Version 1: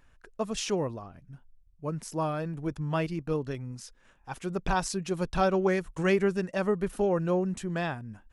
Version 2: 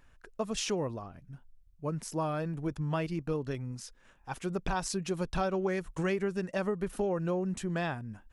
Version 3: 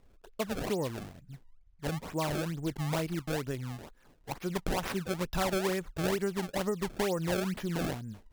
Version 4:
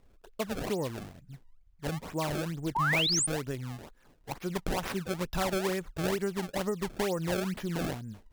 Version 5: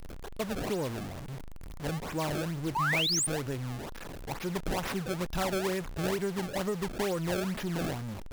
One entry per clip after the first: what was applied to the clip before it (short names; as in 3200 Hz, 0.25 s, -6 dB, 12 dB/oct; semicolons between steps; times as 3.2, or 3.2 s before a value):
compressor 4:1, threshold -28 dBFS, peak gain reduction 7.5 dB
decimation with a swept rate 26×, swing 160% 2.2 Hz
painted sound rise, 2.75–3.27, 840–9700 Hz -28 dBFS
zero-crossing step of -33.5 dBFS; gain -2.5 dB